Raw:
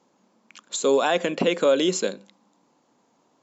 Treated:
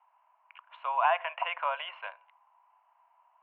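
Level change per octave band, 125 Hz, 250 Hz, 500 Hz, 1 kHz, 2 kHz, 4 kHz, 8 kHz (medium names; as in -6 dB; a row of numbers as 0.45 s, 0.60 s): under -40 dB, under -40 dB, -16.5 dB, +1.0 dB, -4.0 dB, -12.0 dB, no reading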